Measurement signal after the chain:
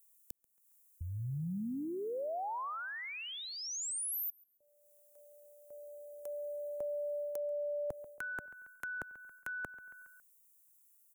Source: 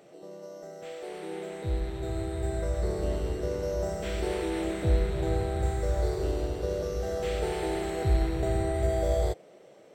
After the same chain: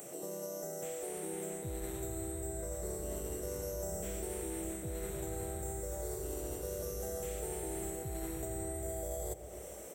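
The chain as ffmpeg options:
-filter_complex "[0:a]asplit=2[a][b];[b]adelay=138,lowpass=f=2.9k:p=1,volume=-20dB,asplit=2[c][d];[d]adelay=138,lowpass=f=2.9k:p=1,volume=0.49,asplit=2[e][f];[f]adelay=138,lowpass=f=2.9k:p=1,volume=0.49,asplit=2[g][h];[h]adelay=138,lowpass=f=2.9k:p=1,volume=0.49[i];[a][c][e][g][i]amix=inputs=5:normalize=0,areverse,acompressor=threshold=-33dB:ratio=6,areverse,aexciter=amount=11.8:drive=5.5:freq=6.7k,acrossover=split=160|750[j][k][l];[j]acompressor=threshold=-49dB:ratio=4[m];[k]acompressor=threshold=-46dB:ratio=4[n];[l]acompressor=threshold=-50dB:ratio=4[o];[m][n][o]amix=inputs=3:normalize=0,volume=4.5dB"

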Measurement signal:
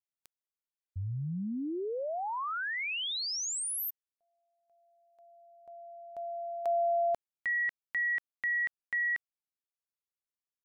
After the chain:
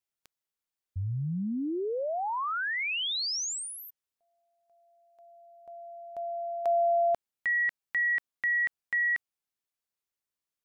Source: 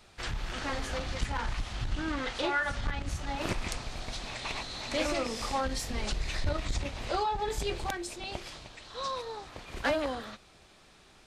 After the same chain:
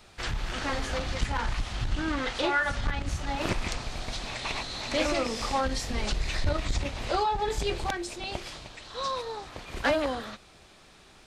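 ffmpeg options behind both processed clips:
-filter_complex "[0:a]acrossover=split=7900[a][b];[b]acompressor=threshold=-54dB:ratio=4:attack=1:release=60[c];[a][c]amix=inputs=2:normalize=0,volume=3.5dB"

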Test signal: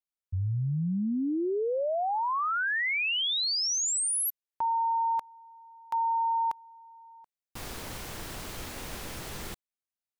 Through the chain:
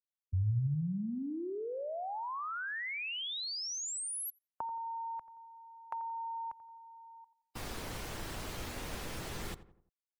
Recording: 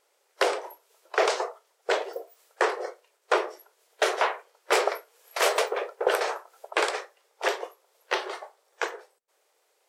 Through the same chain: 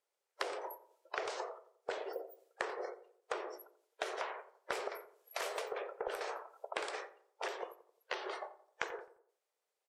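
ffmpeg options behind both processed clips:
-filter_complex "[0:a]afftdn=nr=18:nf=-51,acrossover=split=130[a][b];[b]acompressor=threshold=-37dB:ratio=8:attack=9.9:release=175:knee=2.83:detection=peak[c];[a][c]amix=inputs=2:normalize=0,asplit=2[d][e];[e]adelay=87,lowpass=f=1.4k:p=1,volume=-13.5dB,asplit=2[f][g];[g]adelay=87,lowpass=f=1.4k:p=1,volume=0.46,asplit=2[h][i];[i]adelay=87,lowpass=f=1.4k:p=1,volume=0.46,asplit=2[j][k];[k]adelay=87,lowpass=f=1.4k:p=1,volume=0.46[l];[d][f][h][j][l]amix=inputs=5:normalize=0,volume=-1dB"

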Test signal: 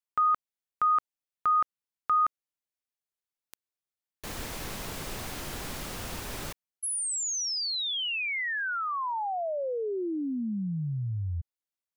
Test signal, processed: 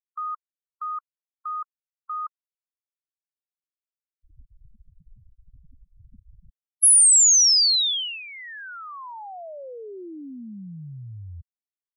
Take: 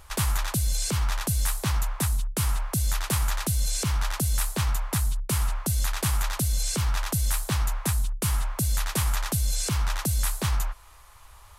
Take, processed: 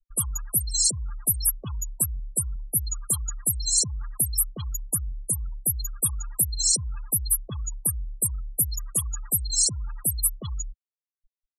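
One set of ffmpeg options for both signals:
-af "afftfilt=real='re*gte(hypot(re,im),0.0708)':imag='im*gte(hypot(re,im),0.0708)':win_size=1024:overlap=0.75,aexciter=amount=12.6:drive=3.7:freq=3.5k,afftdn=nr=18:nf=-39,volume=-6.5dB"

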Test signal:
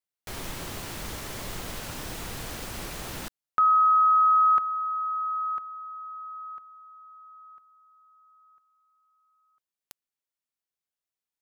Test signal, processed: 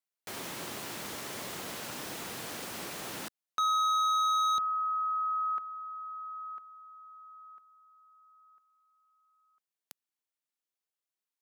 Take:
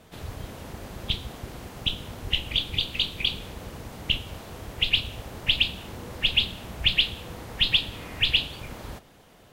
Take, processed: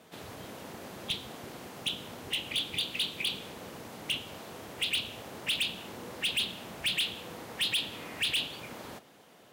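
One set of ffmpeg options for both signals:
-filter_complex "[0:a]highpass=190,acrossover=split=6600[a][b];[a]asoftclip=type=hard:threshold=-24.5dB[c];[c][b]amix=inputs=2:normalize=0,volume=-2dB"

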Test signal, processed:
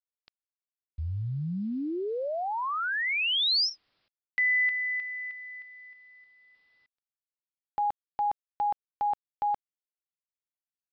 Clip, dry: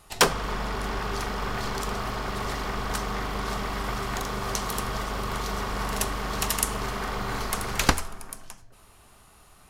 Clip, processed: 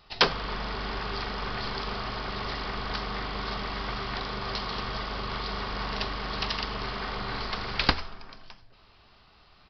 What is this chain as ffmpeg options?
-af "aemphasis=mode=production:type=75kf,acrusher=bits=9:mix=0:aa=0.000001,aresample=11025,aresample=44100,volume=-4dB"

